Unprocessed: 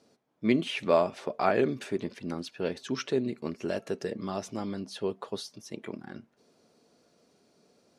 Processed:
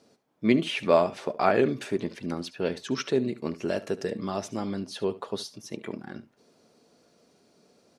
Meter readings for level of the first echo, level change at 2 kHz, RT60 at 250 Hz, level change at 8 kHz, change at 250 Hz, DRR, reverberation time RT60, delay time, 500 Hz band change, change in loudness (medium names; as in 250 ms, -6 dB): -17.0 dB, +3.0 dB, no reverb, +3.0 dB, +3.0 dB, no reverb, no reverb, 71 ms, +3.0 dB, +3.0 dB